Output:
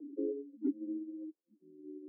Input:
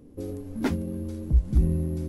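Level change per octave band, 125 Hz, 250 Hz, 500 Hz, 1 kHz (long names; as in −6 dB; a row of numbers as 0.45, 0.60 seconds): below −40 dB, −8.5 dB, −5.5 dB, below −35 dB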